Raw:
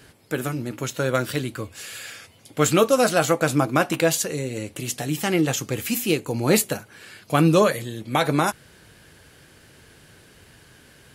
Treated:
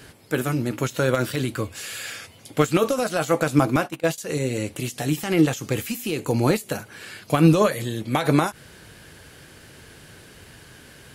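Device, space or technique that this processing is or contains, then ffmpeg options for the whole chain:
de-esser from a sidechain: -filter_complex "[0:a]asplit=2[a][b];[b]highpass=4k,apad=whole_len=491492[c];[a][c]sidechaincompress=threshold=-34dB:ratio=10:attack=0.63:release=74,asettb=1/sr,asplit=3[d][e][f];[d]atrim=end=3.764[g];[e]atrim=start=3.76:end=4.18,asetpts=PTS-STARTPTS,afade=t=in:d=0.004:c=qsin,afade=t=out:st=0.416:d=0.004:c=qsin,agate=range=-16dB:threshold=-29dB:ratio=16:detection=peak[h];[f]atrim=start=4.176[i];[g][h]acrossfade=d=0.004:c1=hsin:c2=qsin[j];[j][i]acrossfade=d=0.004:c1=qsin:c2=hsin,volume=4.5dB"

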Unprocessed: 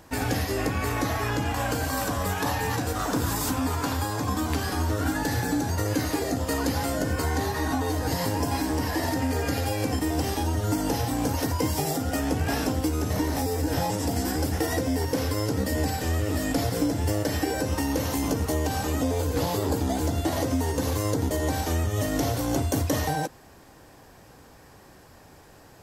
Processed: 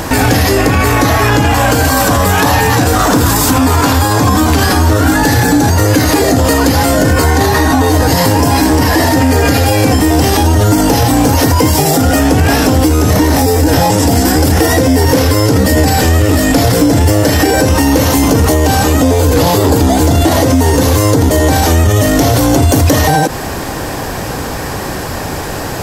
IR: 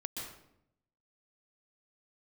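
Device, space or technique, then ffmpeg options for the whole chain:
loud club master: -af "acompressor=threshold=-31dB:ratio=1.5,asoftclip=type=hard:threshold=-21dB,alimiter=level_in=32.5dB:limit=-1dB:release=50:level=0:latency=1,volume=-1dB"

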